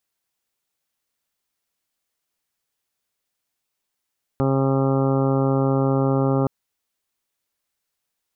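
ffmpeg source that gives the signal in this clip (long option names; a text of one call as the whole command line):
ffmpeg -f lavfi -i "aevalsrc='0.0944*sin(2*PI*135*t)+0.0794*sin(2*PI*270*t)+0.0596*sin(2*PI*405*t)+0.0531*sin(2*PI*540*t)+0.0188*sin(2*PI*675*t)+0.0299*sin(2*PI*810*t)+0.0133*sin(2*PI*945*t)+0.0126*sin(2*PI*1080*t)+0.0224*sin(2*PI*1215*t)+0.0106*sin(2*PI*1350*t)':duration=2.07:sample_rate=44100" out.wav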